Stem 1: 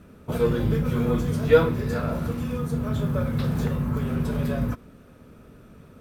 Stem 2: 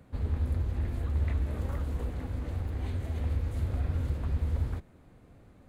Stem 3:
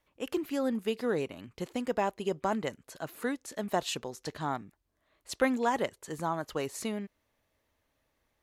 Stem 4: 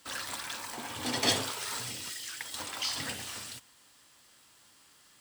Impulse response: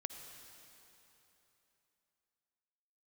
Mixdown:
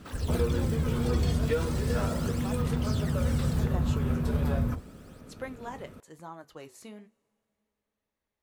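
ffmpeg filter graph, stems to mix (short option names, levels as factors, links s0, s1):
-filter_complex "[0:a]acompressor=threshold=0.0501:ratio=6,volume=1[s0];[1:a]lowpass=1000,volume=0.944[s1];[2:a]flanger=delay=9.7:depth=5.5:regen=-61:speed=1.1:shape=sinusoidal,volume=0.398,asplit=2[s2][s3];[s3]volume=0.112[s4];[3:a]aphaser=in_gain=1:out_gain=1:delay=2.8:decay=0.69:speed=0.37:type=sinusoidal,acompressor=threshold=0.0178:ratio=4,volume=0.447[s5];[4:a]atrim=start_sample=2205[s6];[s4][s6]afir=irnorm=-1:irlink=0[s7];[s0][s1][s2][s5][s7]amix=inputs=5:normalize=0"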